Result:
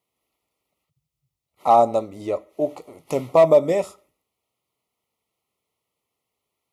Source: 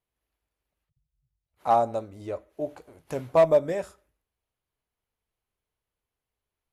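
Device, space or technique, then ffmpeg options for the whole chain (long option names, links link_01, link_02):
PA system with an anti-feedback notch: -af "highpass=150,asuperstop=centerf=1600:order=8:qfactor=3.2,alimiter=limit=-14dB:level=0:latency=1:release=11,volume=8.5dB"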